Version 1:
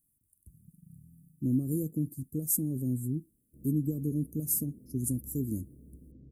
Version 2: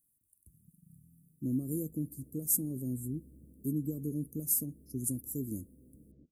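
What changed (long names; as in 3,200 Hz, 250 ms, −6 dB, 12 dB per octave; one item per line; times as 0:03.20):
background: entry −2.00 s
master: add low-shelf EQ 290 Hz −7.5 dB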